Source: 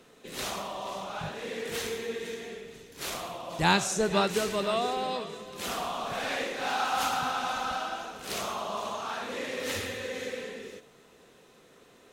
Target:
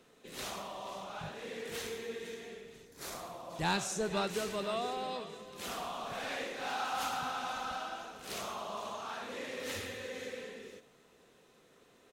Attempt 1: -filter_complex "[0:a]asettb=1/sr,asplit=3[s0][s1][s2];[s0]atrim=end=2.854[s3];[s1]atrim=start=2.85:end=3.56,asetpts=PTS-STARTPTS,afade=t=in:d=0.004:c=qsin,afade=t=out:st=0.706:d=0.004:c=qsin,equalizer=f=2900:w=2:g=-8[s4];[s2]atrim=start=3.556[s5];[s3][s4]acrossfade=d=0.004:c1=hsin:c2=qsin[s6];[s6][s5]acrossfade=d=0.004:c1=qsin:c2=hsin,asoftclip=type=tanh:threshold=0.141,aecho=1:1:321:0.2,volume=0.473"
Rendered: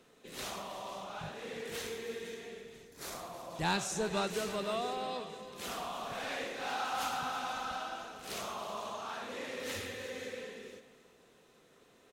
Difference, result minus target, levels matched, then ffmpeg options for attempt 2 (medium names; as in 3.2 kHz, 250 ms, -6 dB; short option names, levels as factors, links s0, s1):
echo-to-direct +12 dB
-filter_complex "[0:a]asettb=1/sr,asplit=3[s0][s1][s2];[s0]atrim=end=2.854[s3];[s1]atrim=start=2.85:end=3.56,asetpts=PTS-STARTPTS,afade=t=in:d=0.004:c=qsin,afade=t=out:st=0.706:d=0.004:c=qsin,equalizer=f=2900:w=2:g=-8[s4];[s2]atrim=start=3.556[s5];[s3][s4]acrossfade=d=0.004:c1=hsin:c2=qsin[s6];[s6][s5]acrossfade=d=0.004:c1=qsin:c2=hsin,asoftclip=type=tanh:threshold=0.141,aecho=1:1:321:0.0501,volume=0.473"